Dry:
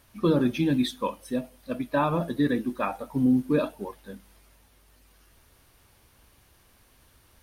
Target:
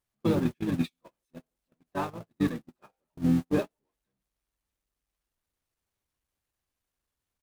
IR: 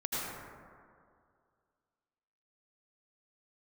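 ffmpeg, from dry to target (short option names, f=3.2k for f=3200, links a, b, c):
-filter_complex "[0:a]aeval=exprs='val(0)+0.5*0.0398*sgn(val(0))':c=same,asplit=3[a][b][c];[b]asetrate=29433,aresample=44100,atempo=1.49831,volume=-3dB[d];[c]asetrate=55563,aresample=44100,atempo=0.793701,volume=-15dB[e];[a][d][e]amix=inputs=3:normalize=0,agate=range=-49dB:threshold=-18dB:ratio=16:detection=peak,volume=-5.5dB"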